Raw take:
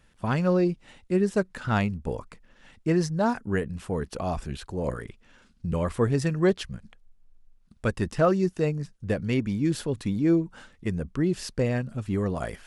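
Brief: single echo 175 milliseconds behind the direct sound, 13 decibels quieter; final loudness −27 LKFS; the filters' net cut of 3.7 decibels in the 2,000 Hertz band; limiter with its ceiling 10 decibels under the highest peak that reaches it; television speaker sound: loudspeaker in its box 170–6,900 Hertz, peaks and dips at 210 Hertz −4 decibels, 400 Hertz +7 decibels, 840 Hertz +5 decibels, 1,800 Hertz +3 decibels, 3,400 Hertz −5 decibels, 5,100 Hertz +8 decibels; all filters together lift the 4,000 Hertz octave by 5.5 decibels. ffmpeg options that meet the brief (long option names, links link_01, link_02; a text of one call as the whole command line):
ffmpeg -i in.wav -af "equalizer=frequency=2000:width_type=o:gain=-8.5,equalizer=frequency=4000:width_type=o:gain=6,alimiter=limit=-21.5dB:level=0:latency=1,highpass=frequency=170:width=0.5412,highpass=frequency=170:width=1.3066,equalizer=frequency=210:width_type=q:width=4:gain=-4,equalizer=frequency=400:width_type=q:width=4:gain=7,equalizer=frequency=840:width_type=q:width=4:gain=5,equalizer=frequency=1800:width_type=q:width=4:gain=3,equalizer=frequency=3400:width_type=q:width=4:gain=-5,equalizer=frequency=5100:width_type=q:width=4:gain=8,lowpass=frequency=6900:width=0.5412,lowpass=frequency=6900:width=1.3066,aecho=1:1:175:0.224,volume=4.5dB" out.wav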